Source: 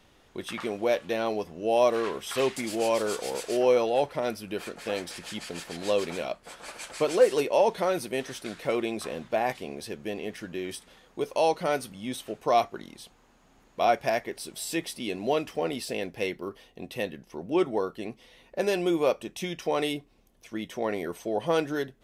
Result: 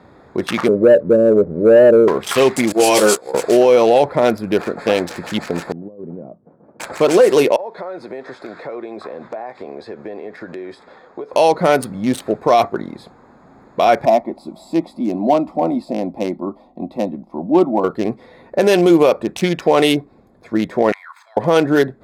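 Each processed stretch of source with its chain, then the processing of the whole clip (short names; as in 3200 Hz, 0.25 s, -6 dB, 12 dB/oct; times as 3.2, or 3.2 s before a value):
0.68–2.08 rippled Chebyshev low-pass 600 Hz, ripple 3 dB + sample leveller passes 1
2.72–3.34 gate -30 dBFS, range -22 dB + high shelf 4100 Hz +9 dB + doubler 15 ms -4 dB
5.72–6.8 negative-ratio compressor -31 dBFS + ladder band-pass 180 Hz, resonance 20%
7.56–11.33 three-band isolator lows -12 dB, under 340 Hz, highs -19 dB, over 7800 Hz + compressor, threshold -42 dBFS
14.05–17.84 high shelf 2600 Hz -11 dB + fixed phaser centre 440 Hz, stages 6
20.92–21.37 median filter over 3 samples + steep high-pass 1000 Hz 48 dB/oct + level quantiser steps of 10 dB
whole clip: Wiener smoothing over 15 samples; HPF 87 Hz; maximiser +19 dB; gain -2 dB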